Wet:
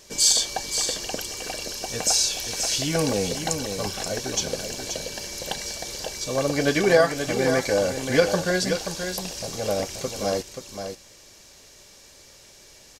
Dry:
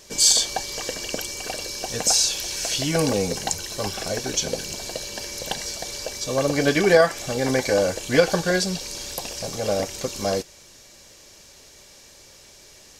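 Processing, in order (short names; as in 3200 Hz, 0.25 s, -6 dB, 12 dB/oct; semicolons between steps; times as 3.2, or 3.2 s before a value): echo 0.53 s -7.5 dB; gain -2 dB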